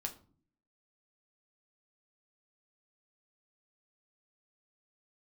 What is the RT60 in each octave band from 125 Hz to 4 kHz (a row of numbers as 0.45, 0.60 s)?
0.80, 0.80, 0.50, 0.40, 0.30, 0.30 s